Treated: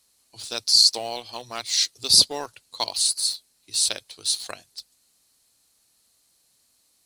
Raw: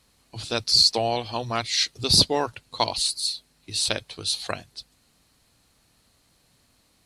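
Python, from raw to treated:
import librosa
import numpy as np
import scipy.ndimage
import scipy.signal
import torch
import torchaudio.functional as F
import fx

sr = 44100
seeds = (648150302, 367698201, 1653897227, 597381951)

p1 = fx.bass_treble(x, sr, bass_db=-8, treble_db=13)
p2 = np.where(np.abs(p1) >= 10.0 ** (-22.5 / 20.0), p1, 0.0)
p3 = p1 + (p2 * librosa.db_to_amplitude(-8.5))
y = p3 * librosa.db_to_amplitude(-9.0)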